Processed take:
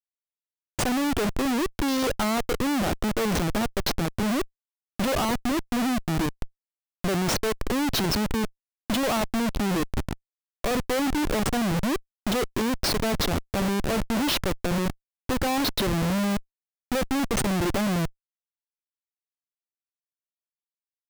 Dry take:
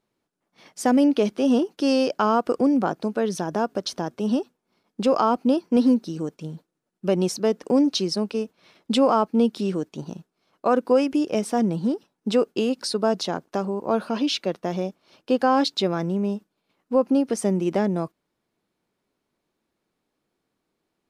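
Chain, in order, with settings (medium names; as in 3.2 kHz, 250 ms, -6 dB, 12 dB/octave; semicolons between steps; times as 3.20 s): Schmitt trigger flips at -30 dBFS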